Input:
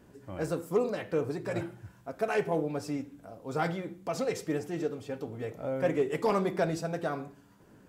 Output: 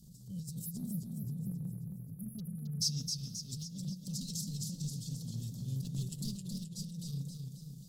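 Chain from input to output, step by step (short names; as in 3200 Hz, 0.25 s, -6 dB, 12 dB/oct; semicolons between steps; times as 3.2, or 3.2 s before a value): spectral delete 0.66–2.81, 420–10000 Hz; one-sided clip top -25 dBFS, bottom -24.5 dBFS; elliptic band-stop 170–4100 Hz, stop band 50 dB; fixed phaser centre 450 Hz, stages 8; negative-ratio compressor -47 dBFS, ratio -1; transient shaper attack -9 dB, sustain -5 dB; spectral gain 2.14–3.51, 1200–6700 Hz +10 dB; warbling echo 0.266 s, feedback 54%, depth 94 cents, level -5 dB; gain +8.5 dB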